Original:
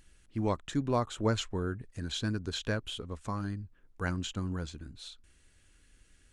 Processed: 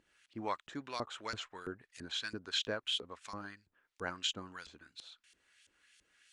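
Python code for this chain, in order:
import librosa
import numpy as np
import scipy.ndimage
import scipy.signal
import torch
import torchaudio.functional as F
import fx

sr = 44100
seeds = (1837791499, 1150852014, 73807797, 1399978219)

y = fx.filter_lfo_bandpass(x, sr, shape='saw_up', hz=3.0, low_hz=350.0, high_hz=4500.0, q=0.9)
y = fx.tilt_shelf(y, sr, db=-6.5, hz=1200.0)
y = y * librosa.db_to_amplitude(2.0)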